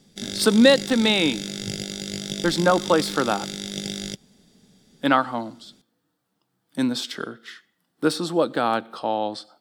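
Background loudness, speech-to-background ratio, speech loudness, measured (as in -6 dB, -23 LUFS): -31.0 LUFS, 9.0 dB, -22.0 LUFS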